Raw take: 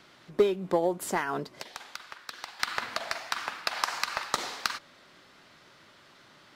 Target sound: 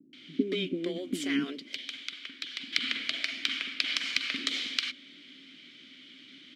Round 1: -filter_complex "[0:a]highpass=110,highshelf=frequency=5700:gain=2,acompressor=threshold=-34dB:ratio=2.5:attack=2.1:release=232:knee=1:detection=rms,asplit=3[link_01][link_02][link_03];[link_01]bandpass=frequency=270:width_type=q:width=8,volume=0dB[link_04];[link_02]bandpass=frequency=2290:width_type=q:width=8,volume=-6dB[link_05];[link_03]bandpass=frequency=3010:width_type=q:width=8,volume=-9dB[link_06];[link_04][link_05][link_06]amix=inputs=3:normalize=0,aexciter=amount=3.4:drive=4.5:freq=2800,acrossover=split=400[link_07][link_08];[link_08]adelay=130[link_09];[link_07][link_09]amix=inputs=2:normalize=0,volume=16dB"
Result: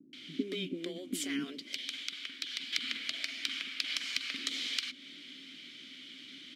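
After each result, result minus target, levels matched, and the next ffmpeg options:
downward compressor: peak gain reduction +7.5 dB; 8,000 Hz band +5.5 dB
-filter_complex "[0:a]highpass=110,highshelf=frequency=5700:gain=2,acompressor=threshold=-22dB:ratio=2.5:attack=2.1:release=232:knee=1:detection=rms,asplit=3[link_01][link_02][link_03];[link_01]bandpass=frequency=270:width_type=q:width=8,volume=0dB[link_04];[link_02]bandpass=frequency=2290:width_type=q:width=8,volume=-6dB[link_05];[link_03]bandpass=frequency=3010:width_type=q:width=8,volume=-9dB[link_06];[link_04][link_05][link_06]amix=inputs=3:normalize=0,aexciter=amount=3.4:drive=4.5:freq=2800,acrossover=split=400[link_07][link_08];[link_08]adelay=130[link_09];[link_07][link_09]amix=inputs=2:normalize=0,volume=16dB"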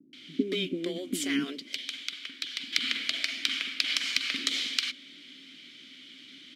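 8,000 Hz band +4.5 dB
-filter_complex "[0:a]highpass=110,highshelf=frequency=5700:gain=-9.5,acompressor=threshold=-22dB:ratio=2.5:attack=2.1:release=232:knee=1:detection=rms,asplit=3[link_01][link_02][link_03];[link_01]bandpass=frequency=270:width_type=q:width=8,volume=0dB[link_04];[link_02]bandpass=frequency=2290:width_type=q:width=8,volume=-6dB[link_05];[link_03]bandpass=frequency=3010:width_type=q:width=8,volume=-9dB[link_06];[link_04][link_05][link_06]amix=inputs=3:normalize=0,aexciter=amount=3.4:drive=4.5:freq=2800,acrossover=split=400[link_07][link_08];[link_08]adelay=130[link_09];[link_07][link_09]amix=inputs=2:normalize=0,volume=16dB"

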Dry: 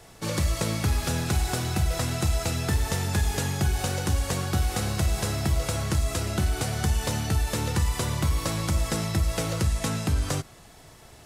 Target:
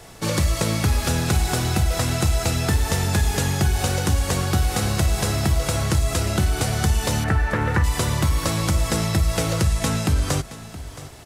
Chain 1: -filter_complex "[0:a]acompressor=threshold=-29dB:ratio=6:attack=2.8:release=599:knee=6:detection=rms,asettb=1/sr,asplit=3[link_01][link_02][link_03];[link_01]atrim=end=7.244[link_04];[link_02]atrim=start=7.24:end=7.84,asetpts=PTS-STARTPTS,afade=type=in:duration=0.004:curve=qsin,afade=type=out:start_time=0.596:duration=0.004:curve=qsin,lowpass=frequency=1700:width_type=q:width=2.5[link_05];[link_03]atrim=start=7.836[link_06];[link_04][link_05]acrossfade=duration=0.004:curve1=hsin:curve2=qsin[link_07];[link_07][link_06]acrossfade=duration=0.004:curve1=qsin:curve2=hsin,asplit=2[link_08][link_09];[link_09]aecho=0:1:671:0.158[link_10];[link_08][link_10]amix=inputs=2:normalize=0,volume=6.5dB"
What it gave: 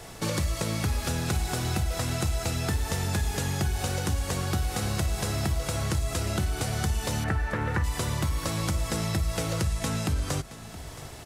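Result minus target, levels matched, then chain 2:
downward compressor: peak gain reduction +8 dB
-filter_complex "[0:a]acompressor=threshold=-18dB:ratio=6:attack=2.8:release=599:knee=6:detection=rms,asettb=1/sr,asplit=3[link_01][link_02][link_03];[link_01]atrim=end=7.244[link_04];[link_02]atrim=start=7.24:end=7.84,asetpts=PTS-STARTPTS,afade=type=in:duration=0.004:curve=qsin,afade=type=out:start_time=0.596:duration=0.004:curve=qsin,lowpass=frequency=1700:width_type=q:width=2.5[link_05];[link_03]atrim=start=7.836[link_06];[link_04][link_05]acrossfade=duration=0.004:curve1=hsin:curve2=qsin[link_07];[link_07][link_06]acrossfade=duration=0.004:curve1=qsin:curve2=hsin,asplit=2[link_08][link_09];[link_09]aecho=0:1:671:0.158[link_10];[link_08][link_10]amix=inputs=2:normalize=0,volume=6.5dB"

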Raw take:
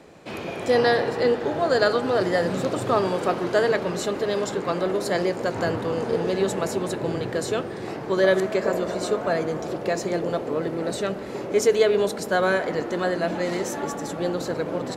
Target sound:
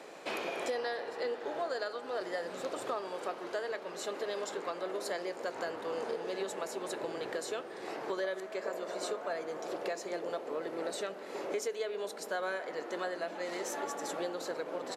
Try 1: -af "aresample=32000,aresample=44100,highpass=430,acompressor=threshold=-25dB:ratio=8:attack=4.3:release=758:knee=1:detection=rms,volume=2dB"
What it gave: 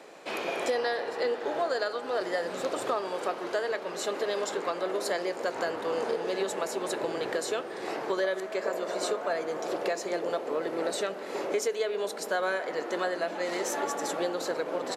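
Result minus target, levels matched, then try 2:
downward compressor: peak gain reduction −6.5 dB
-af "aresample=32000,aresample=44100,highpass=430,acompressor=threshold=-32.5dB:ratio=8:attack=4.3:release=758:knee=1:detection=rms,volume=2dB"

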